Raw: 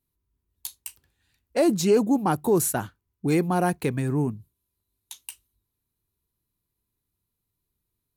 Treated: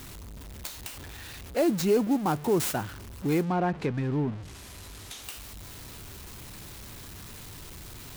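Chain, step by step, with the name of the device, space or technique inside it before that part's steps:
early CD player with a faulty converter (converter with a step at zero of −31.5 dBFS; converter with an unsteady clock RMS 0.025 ms)
0:03.43–0:05.24: treble cut that deepens with the level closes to 2,700 Hz, closed at −18.5 dBFS
level −4.5 dB

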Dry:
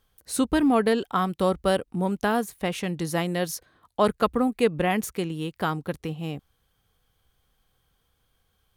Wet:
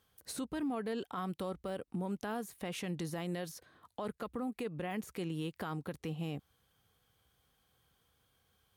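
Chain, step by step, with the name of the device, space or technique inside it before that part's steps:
podcast mastering chain (high-pass filter 75 Hz; de-essing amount 70%; downward compressor 2 to 1, threshold −34 dBFS, peak gain reduction 10.5 dB; brickwall limiter −28 dBFS, peak gain reduction 10 dB; level −1.5 dB; MP3 96 kbit/s 44,100 Hz)

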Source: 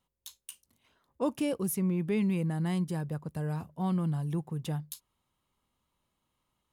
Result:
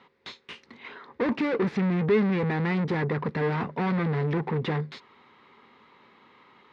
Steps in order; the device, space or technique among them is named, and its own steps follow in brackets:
0:01.64–0:02.09: comb filter 1.2 ms, depth 71%
overdrive pedal into a guitar cabinet (mid-hump overdrive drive 37 dB, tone 3,100 Hz, clips at −18.5 dBFS; loudspeaker in its box 89–3,900 Hz, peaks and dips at 230 Hz +6 dB, 420 Hz +9 dB, 630 Hz −7 dB, 2,000 Hz +6 dB, 3,000 Hz −7 dB)
level −2 dB

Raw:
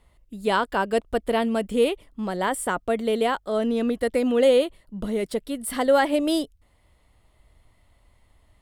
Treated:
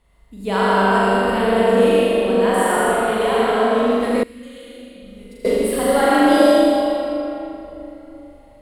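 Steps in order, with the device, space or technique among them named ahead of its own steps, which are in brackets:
tunnel (flutter between parallel walls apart 7 metres, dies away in 1.1 s; convolution reverb RT60 3.4 s, pre-delay 68 ms, DRR −5.5 dB)
0:04.23–0:05.45: guitar amp tone stack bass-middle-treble 6-0-2
level −2.5 dB

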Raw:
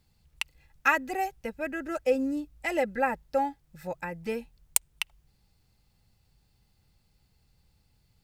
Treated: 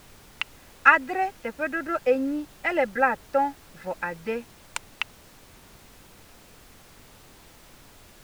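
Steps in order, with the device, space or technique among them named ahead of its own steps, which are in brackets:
horn gramophone (band-pass filter 200–3,600 Hz; parametric band 1,400 Hz +7 dB; tape wow and flutter 24 cents; pink noise bed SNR 22 dB)
level +3 dB

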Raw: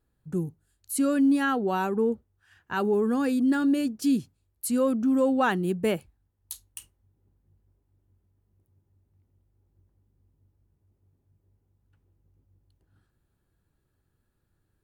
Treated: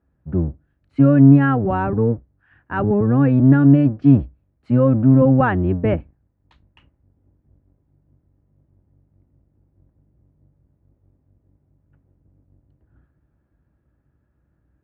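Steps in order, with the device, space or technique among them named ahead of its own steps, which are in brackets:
sub-octave bass pedal (sub-octave generator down 1 octave, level +1 dB; loudspeaker in its box 61–2,200 Hz, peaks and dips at 63 Hz +9 dB, 140 Hz +5 dB, 290 Hz +6 dB, 410 Hz −3 dB, 600 Hz +5 dB)
level +4.5 dB

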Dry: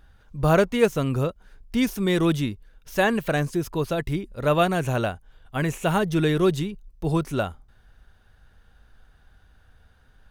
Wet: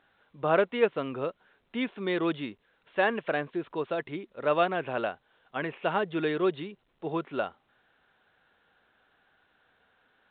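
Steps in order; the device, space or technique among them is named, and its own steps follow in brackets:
telephone (band-pass filter 330–3,600 Hz; level −3.5 dB; A-law companding 64 kbit/s 8,000 Hz)

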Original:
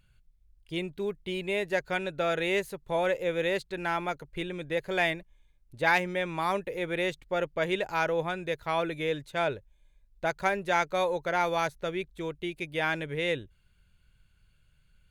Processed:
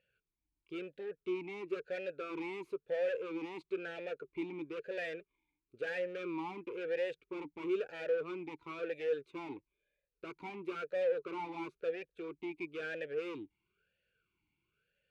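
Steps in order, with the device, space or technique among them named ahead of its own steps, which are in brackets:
talk box (tube saturation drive 36 dB, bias 0.65; formant filter swept between two vowels e-u 1 Hz)
level +9.5 dB

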